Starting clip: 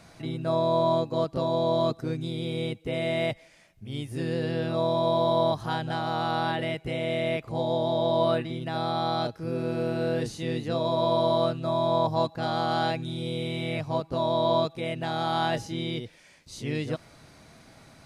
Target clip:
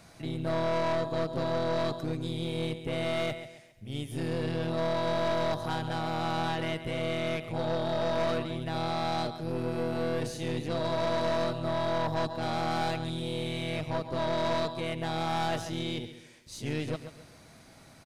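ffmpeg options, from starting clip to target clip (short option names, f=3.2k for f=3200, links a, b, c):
-af "highshelf=f=8.4k:g=6,aecho=1:1:136|272|408|544:0.251|0.0904|0.0326|0.0117,aeval=exprs='(tanh(17.8*val(0)+0.55)-tanh(0.55))/17.8':c=same"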